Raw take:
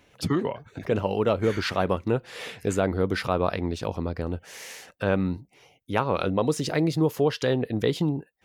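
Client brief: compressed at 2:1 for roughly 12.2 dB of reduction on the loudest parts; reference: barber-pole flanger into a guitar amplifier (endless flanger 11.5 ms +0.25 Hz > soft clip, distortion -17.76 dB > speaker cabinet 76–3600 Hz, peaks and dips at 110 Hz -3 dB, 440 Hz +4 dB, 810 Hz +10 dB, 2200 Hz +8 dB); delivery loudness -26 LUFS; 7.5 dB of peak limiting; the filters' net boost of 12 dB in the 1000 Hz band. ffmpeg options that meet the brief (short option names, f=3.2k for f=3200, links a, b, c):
-filter_complex "[0:a]equalizer=f=1k:t=o:g=8.5,acompressor=threshold=-38dB:ratio=2,alimiter=limit=-23dB:level=0:latency=1,asplit=2[a][b];[b]adelay=11.5,afreqshift=0.25[c];[a][c]amix=inputs=2:normalize=1,asoftclip=threshold=-30dB,highpass=76,equalizer=f=110:t=q:w=4:g=-3,equalizer=f=440:t=q:w=4:g=4,equalizer=f=810:t=q:w=4:g=10,equalizer=f=2.2k:t=q:w=4:g=8,lowpass=f=3.6k:w=0.5412,lowpass=f=3.6k:w=1.3066,volume=12.5dB"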